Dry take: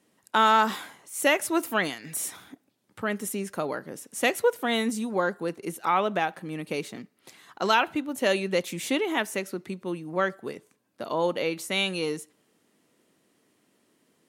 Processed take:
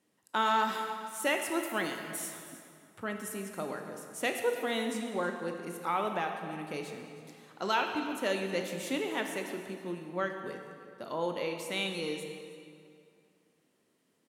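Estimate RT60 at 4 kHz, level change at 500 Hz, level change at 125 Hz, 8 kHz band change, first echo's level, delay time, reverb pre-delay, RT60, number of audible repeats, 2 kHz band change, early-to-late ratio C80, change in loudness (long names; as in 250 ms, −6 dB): 1.8 s, −6.5 dB, −6.5 dB, −7.0 dB, −17.5 dB, 317 ms, 17 ms, 2.4 s, 1, −6.5 dB, 6.0 dB, −6.5 dB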